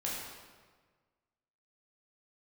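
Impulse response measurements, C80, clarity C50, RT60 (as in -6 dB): 2.0 dB, 0.0 dB, 1.5 s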